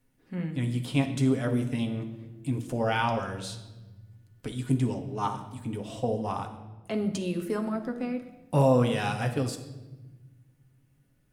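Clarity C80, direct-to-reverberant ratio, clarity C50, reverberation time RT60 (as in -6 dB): 12.5 dB, 3.5 dB, 10.0 dB, 1.2 s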